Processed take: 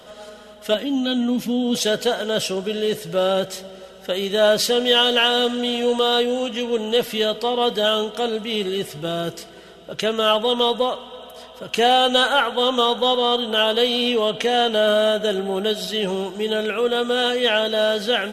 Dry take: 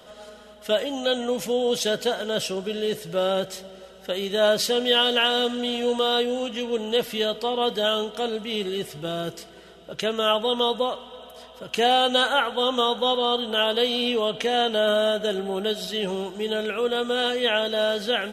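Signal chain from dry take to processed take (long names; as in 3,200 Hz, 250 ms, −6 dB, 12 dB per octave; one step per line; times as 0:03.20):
0:00.74–0:01.75: octave-band graphic EQ 125/250/500/1,000/2,000/8,000 Hz −6/+11/−11/−4/−4/−10 dB
in parallel at −11 dB: asymmetric clip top −20.5 dBFS
on the sum: parametric band 63 Hz −4.5 dB 0.24 octaves
level +2 dB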